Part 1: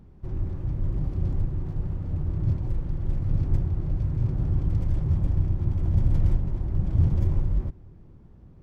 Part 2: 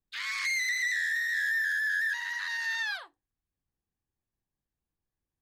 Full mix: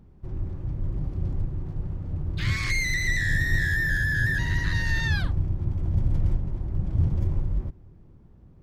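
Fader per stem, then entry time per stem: −2.0, +2.0 decibels; 0.00, 2.25 seconds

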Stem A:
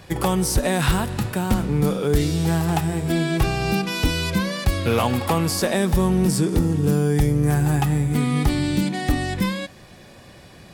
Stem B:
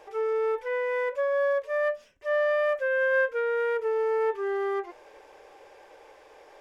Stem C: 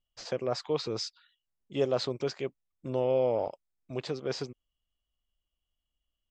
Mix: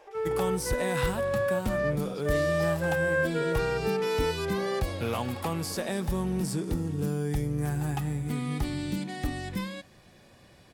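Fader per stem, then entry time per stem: −10.5, −3.0, −15.0 decibels; 0.15, 0.00, 1.60 seconds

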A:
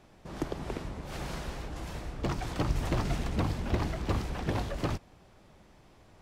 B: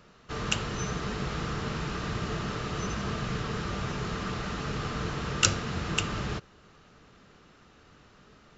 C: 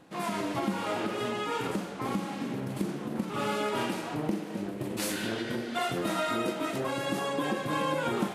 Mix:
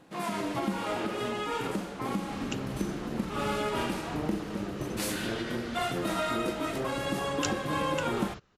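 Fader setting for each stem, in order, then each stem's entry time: −17.5, −11.0, −0.5 decibels; 0.05, 2.00, 0.00 seconds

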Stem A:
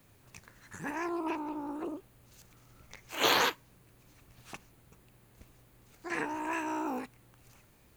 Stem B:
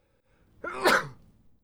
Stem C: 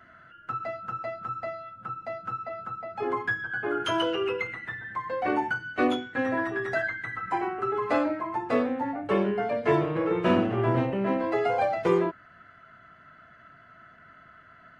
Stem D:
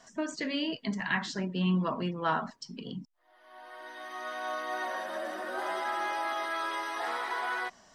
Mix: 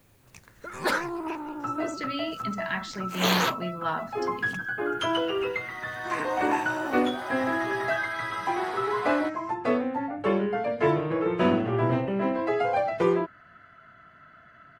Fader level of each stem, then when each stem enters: +1.5, −4.5, 0.0, −1.0 decibels; 0.00, 0.00, 1.15, 1.60 seconds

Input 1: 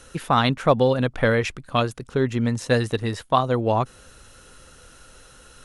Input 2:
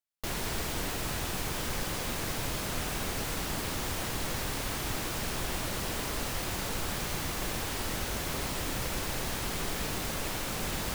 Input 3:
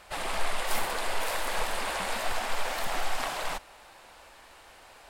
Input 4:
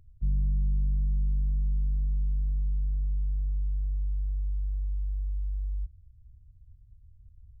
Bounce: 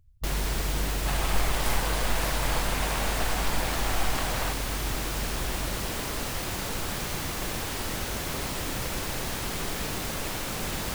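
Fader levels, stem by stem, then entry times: muted, +2.0 dB, −0.5 dB, −5.0 dB; muted, 0.00 s, 0.95 s, 0.00 s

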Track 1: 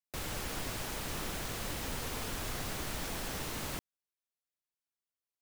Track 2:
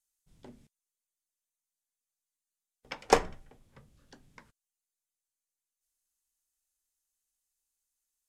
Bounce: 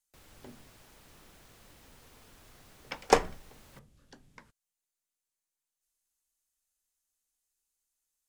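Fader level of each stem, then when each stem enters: −19.0, +0.5 decibels; 0.00, 0.00 seconds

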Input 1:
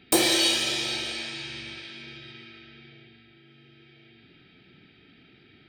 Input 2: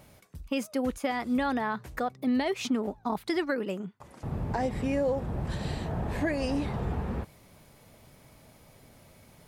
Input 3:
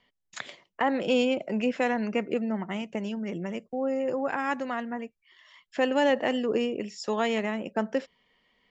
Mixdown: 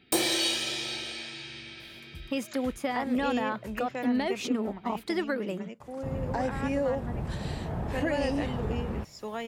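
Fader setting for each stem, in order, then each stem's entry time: −5.0, −1.0, −9.0 decibels; 0.00, 1.80, 2.15 seconds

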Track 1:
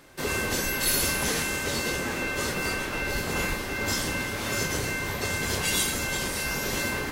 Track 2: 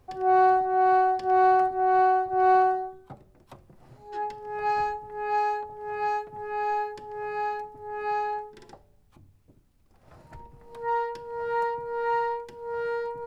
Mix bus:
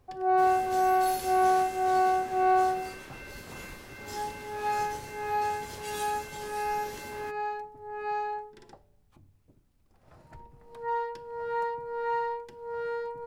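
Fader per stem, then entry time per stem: −15.0, −3.5 decibels; 0.20, 0.00 seconds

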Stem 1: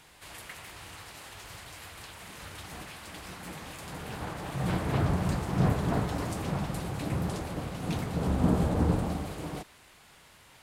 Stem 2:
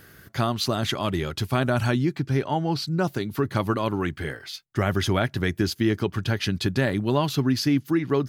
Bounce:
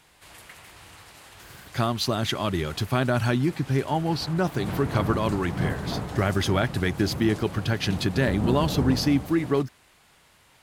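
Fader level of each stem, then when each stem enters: −2.0, −0.5 decibels; 0.00, 1.40 seconds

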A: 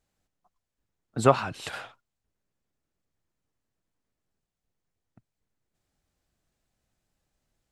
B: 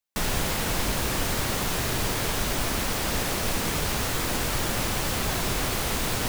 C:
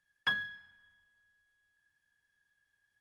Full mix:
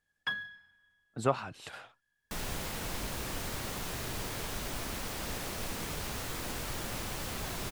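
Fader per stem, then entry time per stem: −9.0, −11.0, −3.0 decibels; 0.00, 2.15, 0.00 seconds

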